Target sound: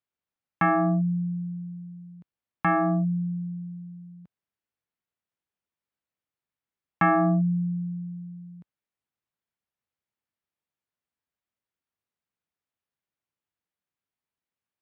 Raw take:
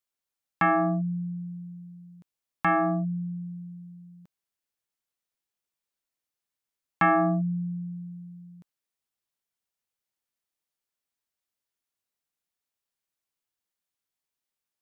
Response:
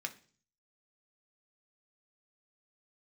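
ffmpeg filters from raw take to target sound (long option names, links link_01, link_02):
-af "highpass=56,bass=frequency=250:gain=5,treble=frequency=4000:gain=-15"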